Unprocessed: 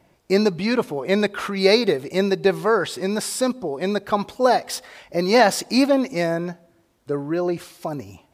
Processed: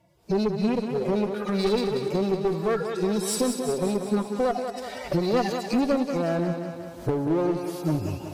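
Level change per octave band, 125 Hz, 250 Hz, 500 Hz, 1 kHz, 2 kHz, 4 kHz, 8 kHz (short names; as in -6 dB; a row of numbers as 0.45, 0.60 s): +1.0, -2.5, -5.0, -7.0, -11.5, -9.0, -4.0 dB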